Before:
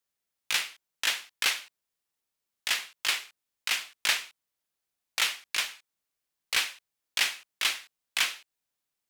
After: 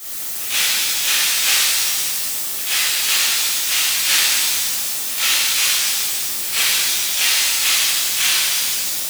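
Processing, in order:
converter with a step at zero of −33.5 dBFS
high-shelf EQ 5,200 Hz +10.5 dB
echo ahead of the sound 131 ms −16 dB
flanger 0.29 Hz, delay 3.1 ms, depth 6.6 ms, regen +72%
reverb with rising layers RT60 1.9 s, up +7 semitones, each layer −2 dB, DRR −11.5 dB
level −1 dB

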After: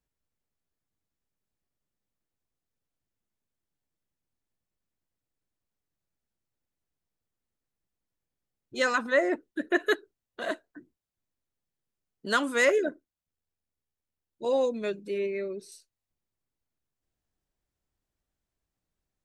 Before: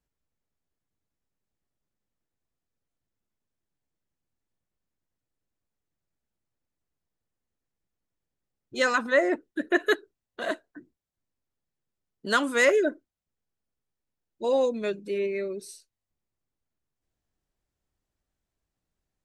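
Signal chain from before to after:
0:12.78–0:14.46: amplitude modulation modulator 78 Hz, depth 35%
0:15.30–0:15.72: high-shelf EQ 7,600 Hz −11 dB
level −2 dB

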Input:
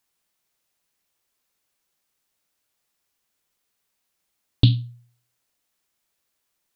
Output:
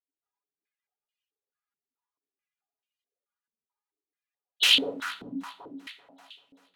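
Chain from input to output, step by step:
notch comb filter 410 Hz
gate on every frequency bin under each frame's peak −25 dB weak
reversed playback
downward compressor 6 to 1, threshold −28 dBFS, peak gain reduction 3.5 dB
reversed playback
wrap-around overflow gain 36 dB
delay that swaps between a low-pass and a high-pass 194 ms, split 940 Hz, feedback 77%, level −9 dB
on a send at −5 dB: convolution reverb RT60 0.60 s, pre-delay 4 ms
on the sum: boost into a limiter +34.5 dB
band-pass on a step sequencer 4.6 Hz 240–2,900 Hz

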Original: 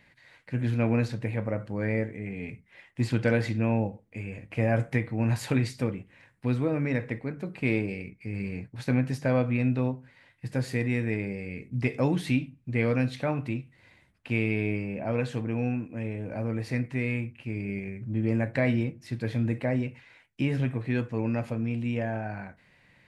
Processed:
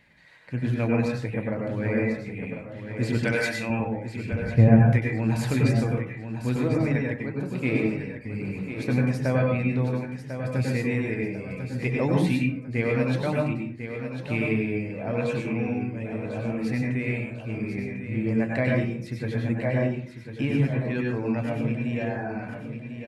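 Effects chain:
0:04.32–0:04.93: RIAA equalisation playback
repeating echo 1,047 ms, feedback 38%, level −9 dB
reverb reduction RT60 0.75 s
0:03.18–0:03.70: spectral tilt +3.5 dB per octave
dense smooth reverb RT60 0.54 s, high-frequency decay 0.5×, pre-delay 85 ms, DRR −1 dB

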